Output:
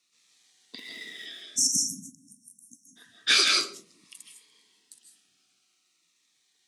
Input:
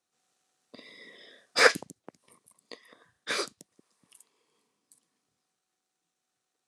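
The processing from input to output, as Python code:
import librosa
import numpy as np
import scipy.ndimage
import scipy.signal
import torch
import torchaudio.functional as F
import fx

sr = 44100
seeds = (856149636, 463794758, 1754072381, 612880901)

p1 = fx.median_filter(x, sr, points=9, at=(0.78, 1.26))
p2 = fx.weighting(p1, sr, curve='D')
p3 = fx.spec_erase(p2, sr, start_s=1.5, length_s=1.47, low_hz=300.0, high_hz=5400.0)
p4 = fx.peak_eq(p3, sr, hz=550.0, db=-10.5, octaves=0.54)
p5 = p4 + fx.echo_single(p4, sr, ms=127, db=-22.5, dry=0)
p6 = fx.rev_freeverb(p5, sr, rt60_s=0.46, hf_ratio=0.4, predelay_ms=115, drr_db=1.0)
p7 = fx.notch_cascade(p6, sr, direction='falling', hz=0.5)
y = p7 * 10.0 ** (4.0 / 20.0)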